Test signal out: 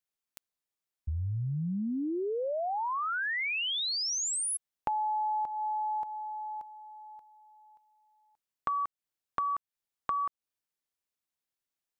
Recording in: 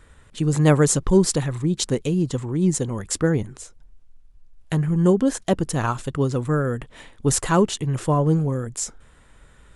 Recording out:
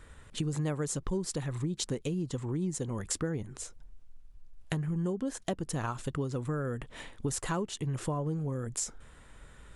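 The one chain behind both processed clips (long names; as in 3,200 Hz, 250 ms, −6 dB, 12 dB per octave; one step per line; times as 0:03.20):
downward compressor 6 to 1, threshold −29 dBFS
level −1.5 dB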